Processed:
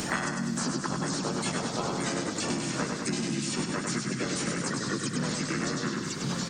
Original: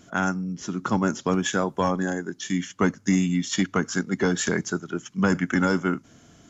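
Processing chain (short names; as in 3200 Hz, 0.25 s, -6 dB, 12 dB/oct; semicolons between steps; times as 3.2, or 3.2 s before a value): high shelf 3900 Hz +9 dB; notch 4500 Hz, Q 9.4; comb 3.9 ms, depth 36%; compressor 12:1, threshold -30 dBFS, peak gain reduction 15.5 dB; echoes that change speed 0.437 s, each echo -2 st, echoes 3, each echo -6 dB; harmoniser -4 st -1 dB, +4 st -1 dB, +5 st -14 dB; on a send: feedback echo 99 ms, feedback 50%, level -4.5 dB; on the sum: three-band squash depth 100%; gain -3.5 dB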